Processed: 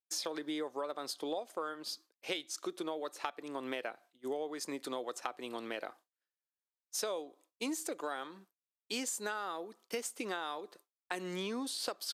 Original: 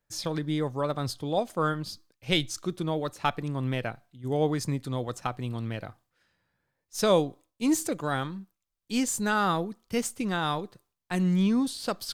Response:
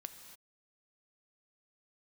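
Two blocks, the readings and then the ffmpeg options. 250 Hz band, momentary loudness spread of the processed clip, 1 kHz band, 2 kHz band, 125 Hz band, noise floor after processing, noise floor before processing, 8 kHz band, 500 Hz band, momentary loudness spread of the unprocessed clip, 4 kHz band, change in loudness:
-14.0 dB, 6 LU, -10.0 dB, -8.5 dB, -27.0 dB, under -85 dBFS, -83 dBFS, -5.5 dB, -9.5 dB, 11 LU, -6.5 dB, -10.5 dB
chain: -af "highpass=f=330:w=0.5412,highpass=f=330:w=1.3066,agate=range=0.0224:threshold=0.00224:ratio=3:detection=peak,acompressor=threshold=0.0141:ratio=12,aresample=32000,aresample=44100,volume=1.33"

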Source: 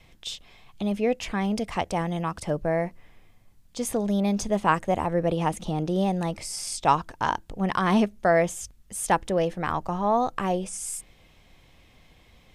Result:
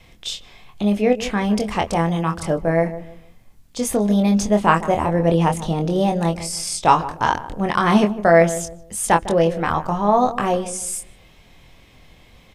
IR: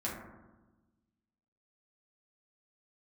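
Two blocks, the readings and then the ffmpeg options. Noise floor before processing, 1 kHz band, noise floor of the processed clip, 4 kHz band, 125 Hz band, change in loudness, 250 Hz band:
-57 dBFS, +6.5 dB, -50 dBFS, +6.5 dB, +7.5 dB, +7.0 dB, +7.0 dB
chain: -filter_complex "[0:a]asplit=2[s0][s1];[s1]adelay=24,volume=0.531[s2];[s0][s2]amix=inputs=2:normalize=0,asplit=2[s3][s4];[s4]adelay=154,lowpass=f=820:p=1,volume=0.251,asplit=2[s5][s6];[s6]adelay=154,lowpass=f=820:p=1,volume=0.33,asplit=2[s7][s8];[s8]adelay=154,lowpass=f=820:p=1,volume=0.33[s9];[s5][s7][s9]amix=inputs=3:normalize=0[s10];[s3][s10]amix=inputs=2:normalize=0,volume=1.88"

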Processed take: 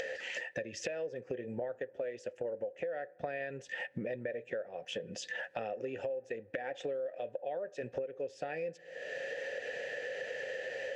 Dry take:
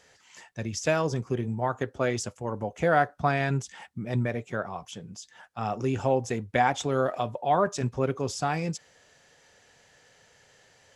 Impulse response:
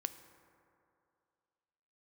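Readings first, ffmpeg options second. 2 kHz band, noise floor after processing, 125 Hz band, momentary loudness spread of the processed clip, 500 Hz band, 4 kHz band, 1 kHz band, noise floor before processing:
-6.0 dB, -59 dBFS, -21.5 dB, 2 LU, -7.0 dB, -6.5 dB, -18.5 dB, -61 dBFS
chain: -filter_complex "[0:a]asplit=3[s0][s1][s2];[s0]bandpass=f=530:t=q:w=8,volume=1[s3];[s1]bandpass=f=1840:t=q:w=8,volume=0.501[s4];[s2]bandpass=f=2480:t=q:w=8,volume=0.355[s5];[s3][s4][s5]amix=inputs=3:normalize=0,acompressor=mode=upward:threshold=0.01:ratio=2.5,alimiter=level_in=2:limit=0.0631:level=0:latency=1:release=279,volume=0.501,acompressor=threshold=0.00282:ratio=12,asplit=2[s6][s7];[1:a]atrim=start_sample=2205,lowpass=2300[s8];[s7][s8]afir=irnorm=-1:irlink=0,volume=0.266[s9];[s6][s9]amix=inputs=2:normalize=0,volume=5.31"

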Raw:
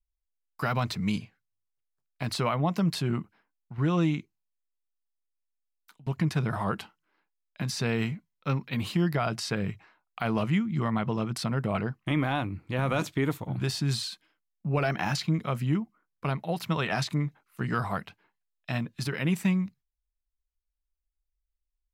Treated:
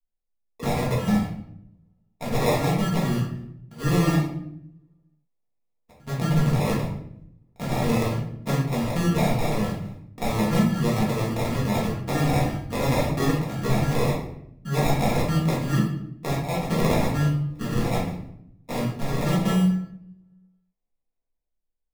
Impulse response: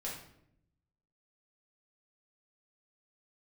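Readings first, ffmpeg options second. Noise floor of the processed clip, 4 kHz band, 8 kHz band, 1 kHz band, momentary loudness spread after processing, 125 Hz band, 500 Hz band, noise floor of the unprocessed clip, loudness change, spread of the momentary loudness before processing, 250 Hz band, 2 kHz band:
-77 dBFS, +2.0 dB, +5.5 dB, +4.5 dB, 13 LU, +5.5 dB, +6.5 dB, -83 dBFS, +5.0 dB, 9 LU, +5.5 dB, +2.0 dB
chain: -filter_complex "[0:a]agate=range=0.355:threshold=0.00112:ratio=16:detection=peak,acrossover=split=170|1300[s0][s1][s2];[s2]dynaudnorm=f=130:g=11:m=2.24[s3];[s0][s1][s3]amix=inputs=3:normalize=0,acrusher=samples=29:mix=1:aa=0.000001[s4];[1:a]atrim=start_sample=2205[s5];[s4][s5]afir=irnorm=-1:irlink=0,volume=1.26"

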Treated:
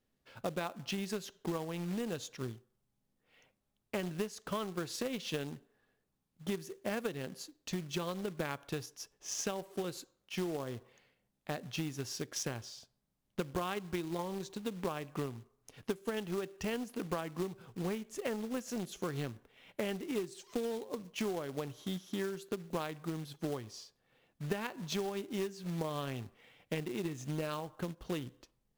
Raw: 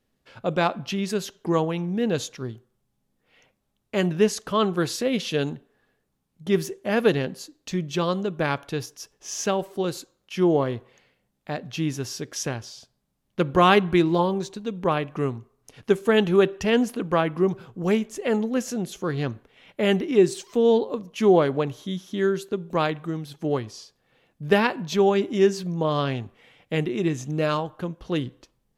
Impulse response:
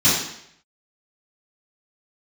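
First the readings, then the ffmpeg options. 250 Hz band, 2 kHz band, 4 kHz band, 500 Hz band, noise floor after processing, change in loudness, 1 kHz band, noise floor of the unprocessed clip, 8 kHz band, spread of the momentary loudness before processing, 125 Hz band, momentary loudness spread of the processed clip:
-14.0 dB, -14.5 dB, -11.5 dB, -16.0 dB, -81 dBFS, -15.0 dB, -16.5 dB, -74 dBFS, -8.0 dB, 13 LU, -13.0 dB, 8 LU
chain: -af "acrusher=bits=4:mode=log:mix=0:aa=0.000001,acompressor=threshold=0.0398:ratio=16,aeval=exprs='0.178*(cos(1*acos(clip(val(0)/0.178,-1,1)))-cos(1*PI/2))+0.00891*(cos(7*acos(clip(val(0)/0.178,-1,1)))-cos(7*PI/2))':c=same,volume=0.668"

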